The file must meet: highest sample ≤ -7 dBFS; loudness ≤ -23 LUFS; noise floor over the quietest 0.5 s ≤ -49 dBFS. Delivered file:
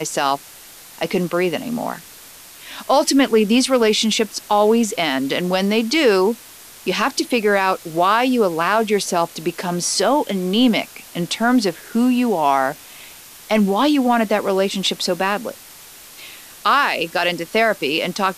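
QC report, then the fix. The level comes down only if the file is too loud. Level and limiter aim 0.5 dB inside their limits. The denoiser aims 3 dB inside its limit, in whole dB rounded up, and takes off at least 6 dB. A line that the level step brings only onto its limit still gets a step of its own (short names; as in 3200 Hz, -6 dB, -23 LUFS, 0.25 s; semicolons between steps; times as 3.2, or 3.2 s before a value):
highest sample -5.0 dBFS: fail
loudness -18.5 LUFS: fail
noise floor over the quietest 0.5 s -41 dBFS: fail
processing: denoiser 6 dB, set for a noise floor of -41 dBFS; gain -5 dB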